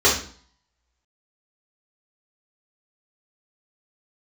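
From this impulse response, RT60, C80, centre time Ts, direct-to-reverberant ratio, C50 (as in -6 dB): 0.50 s, 11.5 dB, 31 ms, -7.5 dB, 5.5 dB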